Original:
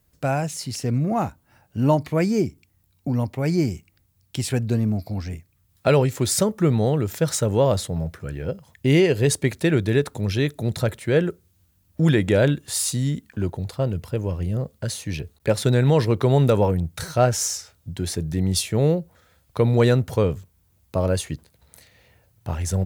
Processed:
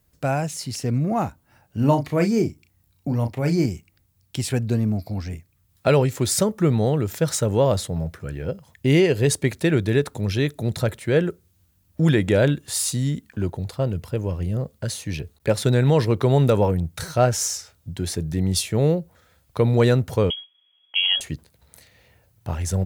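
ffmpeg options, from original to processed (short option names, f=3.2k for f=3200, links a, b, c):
-filter_complex "[0:a]asettb=1/sr,asplit=3[a][b][c];[a]atrim=end=1.774[d];[b]atrim=start=1.77:end=3.66,asetpts=PTS-STARTPTS,afade=t=in:d=0.004:c=qsin,afade=t=out:st=1.886:d=0.004:c=qsin,asplit=2[e][f];[f]adelay=35,volume=-8dB[g];[e][g]amix=inputs=2:normalize=0,atrim=end_sample=83349[h];[c]atrim=start=3.656[i];[d][h]acrossfade=d=0.004:c1=hsin:c2=qsin[j];[j][i]acrossfade=d=0.004:c1=qsin:c2=hsin,asettb=1/sr,asplit=3[k][l][m];[k]atrim=end=20.304[n];[l]atrim=start=20.3:end=21.21,asetpts=PTS-STARTPTS,afade=t=in:d=0.004:c=qsin,afade=t=out:st=0.906:d=0.004:c=qsin,lowpass=f=2.9k:t=q:w=0.5098,lowpass=f=2.9k:t=q:w=0.6013,lowpass=f=2.9k:t=q:w=0.9,lowpass=f=2.9k:t=q:w=2.563,afreqshift=-3400[o];[m]atrim=start=21.206[p];[n][o]acrossfade=d=0.004:c1=hsin:c2=qsin[q];[q][p]acrossfade=d=0.004:c1=qsin:c2=hsin"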